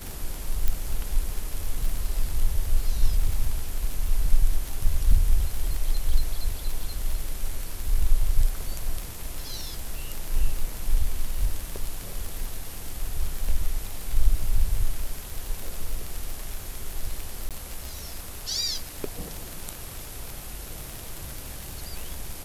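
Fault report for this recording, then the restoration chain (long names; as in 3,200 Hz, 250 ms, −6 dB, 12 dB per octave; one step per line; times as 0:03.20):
surface crackle 42 per second −27 dBFS
0:00.68: click −11 dBFS
0:17.49–0:17.51: drop-out 17 ms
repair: click removal
repair the gap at 0:17.49, 17 ms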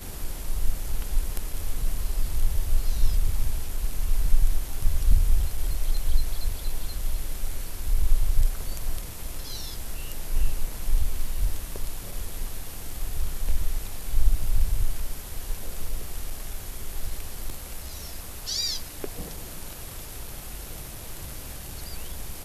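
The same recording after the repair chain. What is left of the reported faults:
0:00.68: click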